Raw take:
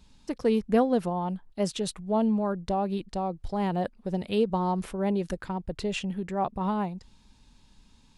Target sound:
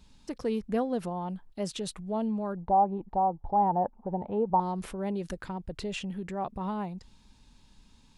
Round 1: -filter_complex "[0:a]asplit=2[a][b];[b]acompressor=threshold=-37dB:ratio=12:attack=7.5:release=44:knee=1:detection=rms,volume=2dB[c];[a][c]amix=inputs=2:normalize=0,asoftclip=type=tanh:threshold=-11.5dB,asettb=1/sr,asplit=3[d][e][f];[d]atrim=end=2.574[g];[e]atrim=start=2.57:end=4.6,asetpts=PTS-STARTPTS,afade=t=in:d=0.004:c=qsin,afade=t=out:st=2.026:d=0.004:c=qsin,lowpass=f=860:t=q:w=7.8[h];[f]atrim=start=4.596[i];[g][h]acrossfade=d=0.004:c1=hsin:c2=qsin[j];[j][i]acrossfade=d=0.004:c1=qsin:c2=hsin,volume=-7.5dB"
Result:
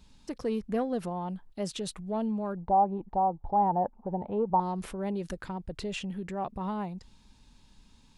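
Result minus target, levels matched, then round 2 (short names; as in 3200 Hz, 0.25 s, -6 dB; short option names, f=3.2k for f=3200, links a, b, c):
soft clip: distortion +18 dB
-filter_complex "[0:a]asplit=2[a][b];[b]acompressor=threshold=-37dB:ratio=12:attack=7.5:release=44:knee=1:detection=rms,volume=2dB[c];[a][c]amix=inputs=2:normalize=0,asoftclip=type=tanh:threshold=-1.5dB,asettb=1/sr,asplit=3[d][e][f];[d]atrim=end=2.574[g];[e]atrim=start=2.57:end=4.6,asetpts=PTS-STARTPTS,afade=t=in:d=0.004:c=qsin,afade=t=out:st=2.026:d=0.004:c=qsin,lowpass=f=860:t=q:w=7.8[h];[f]atrim=start=4.596[i];[g][h]acrossfade=d=0.004:c1=hsin:c2=qsin[j];[j][i]acrossfade=d=0.004:c1=qsin:c2=hsin,volume=-7.5dB"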